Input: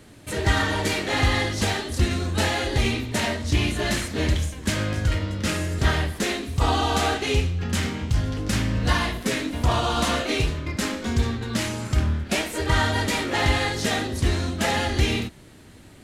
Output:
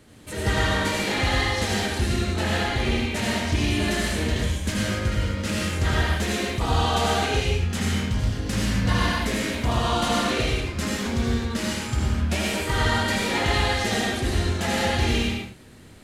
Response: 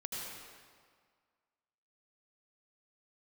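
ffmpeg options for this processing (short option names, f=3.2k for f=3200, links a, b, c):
-filter_complex "[0:a]asettb=1/sr,asplit=3[a][b][c];[a]atrim=end=2.244[d];[b]atrim=start=2.24:end=3.16,asetpts=PTS-STARTPTS,afade=t=in:d=0.004:c=qsin,afade=t=out:st=0.916:d=0.004:c=qsin,bass=f=250:g=0,treble=f=4k:g=-5[e];[c]atrim=start=3.156[f];[d][e]acrossfade=d=0.004:c1=hsin:c2=qsin[g];[g][f]acrossfade=d=0.004:c1=qsin:c2=hsin[h];[1:a]atrim=start_sample=2205,afade=t=out:st=0.32:d=0.01,atrim=end_sample=14553[i];[h][i]afir=irnorm=-1:irlink=0"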